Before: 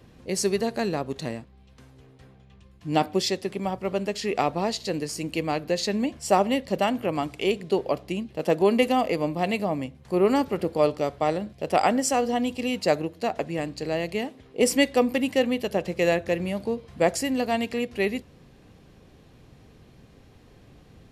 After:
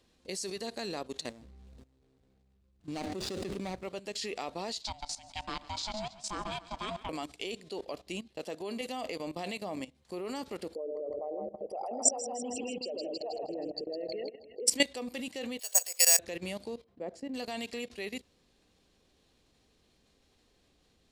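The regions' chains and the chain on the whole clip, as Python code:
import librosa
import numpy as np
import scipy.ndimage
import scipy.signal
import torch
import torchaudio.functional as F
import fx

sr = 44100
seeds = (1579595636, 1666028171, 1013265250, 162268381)

y = fx.chain(x, sr, fx.median_filter(points=41),
    fx.low_shelf(hz=220.0, db=5.5),
    fx.sustainer(db_per_s=26.0), at=(1.29, 3.83))
y = fx.chain(y, sr, fx.bandpass_edges(low_hz=190.0, high_hz=6100.0),
    fx.echo_feedback(ms=138, feedback_pct=52, wet_db=-13.5),
    fx.ring_mod(carrier_hz=430.0), at=(4.82, 7.09))
y = fx.chain(y, sr, fx.envelope_sharpen(power=3.0),
    fx.highpass(hz=81.0, slope=12),
    fx.echo_split(split_hz=650.0, low_ms=96, high_ms=159, feedback_pct=52, wet_db=-5.0), at=(10.75, 14.67))
y = fx.chain(y, sr, fx.highpass(hz=650.0, slope=24),
    fx.resample_bad(factor=6, down='filtered', up='zero_stuff'), at=(15.59, 16.19))
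y = fx.chain(y, sr, fx.bandpass_q(hz=300.0, q=1.0),
    fx.peak_eq(hz=330.0, db=-3.5, octaves=0.51), at=(16.84, 17.34))
y = fx.graphic_eq(y, sr, hz=(125, 4000, 8000), db=(-11, 8, 9))
y = fx.level_steps(y, sr, step_db=16)
y = y * 10.0 ** (-5.0 / 20.0)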